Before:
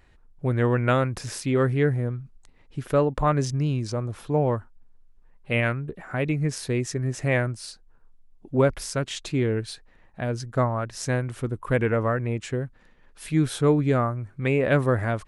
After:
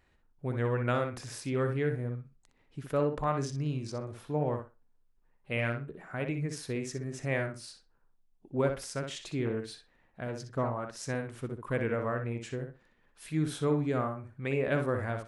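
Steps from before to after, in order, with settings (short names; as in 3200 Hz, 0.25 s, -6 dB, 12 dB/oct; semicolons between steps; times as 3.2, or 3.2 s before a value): low shelf 68 Hz -7 dB; on a send: tape echo 61 ms, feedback 22%, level -5 dB, low-pass 3600 Hz; 9.45–10.96 on the sum: Doppler distortion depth 0.27 ms; gain -8.5 dB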